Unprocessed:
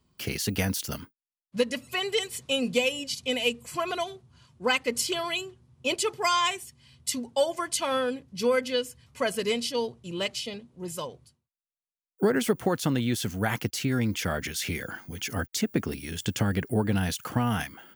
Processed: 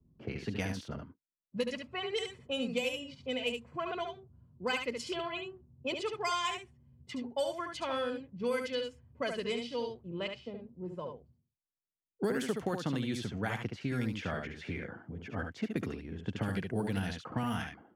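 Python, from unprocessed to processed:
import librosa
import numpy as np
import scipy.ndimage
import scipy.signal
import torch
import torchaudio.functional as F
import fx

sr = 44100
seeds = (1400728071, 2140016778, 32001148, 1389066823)

p1 = fx.env_lowpass(x, sr, base_hz=300.0, full_db=-20.5)
p2 = p1 + fx.echo_single(p1, sr, ms=71, db=-6.0, dry=0)
p3 = fx.band_squash(p2, sr, depth_pct=40)
y = F.gain(torch.from_numpy(p3), -8.0).numpy()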